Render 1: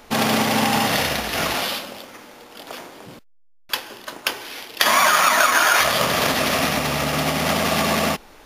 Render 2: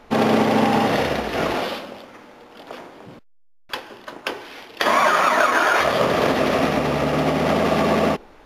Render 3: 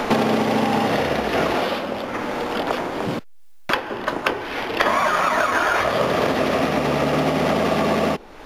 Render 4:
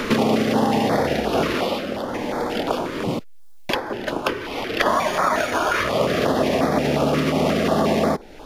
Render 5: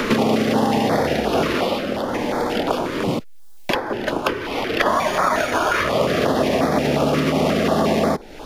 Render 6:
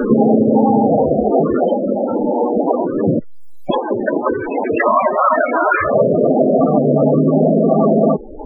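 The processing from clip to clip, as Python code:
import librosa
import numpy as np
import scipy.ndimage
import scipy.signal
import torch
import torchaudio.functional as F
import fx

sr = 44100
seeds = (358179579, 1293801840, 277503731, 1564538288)

y1 = fx.dynamic_eq(x, sr, hz=400.0, q=1.1, threshold_db=-38.0, ratio=4.0, max_db=8)
y1 = fx.lowpass(y1, sr, hz=1800.0, slope=6)
y2 = fx.band_squash(y1, sr, depth_pct=100)
y2 = y2 * 10.0 ** (-1.5 / 20.0)
y3 = fx.filter_held_notch(y2, sr, hz=5.6, low_hz=770.0, high_hz=2800.0)
y3 = y3 * 10.0 ** (1.5 / 20.0)
y4 = fx.band_squash(y3, sr, depth_pct=40)
y4 = y4 * 10.0 ** (1.0 / 20.0)
y5 = fx.fold_sine(y4, sr, drive_db=5, ceiling_db=-1.0)
y5 = fx.spec_topn(y5, sr, count=16)
y5 = y5 * 10.0 ** (-1.0 / 20.0)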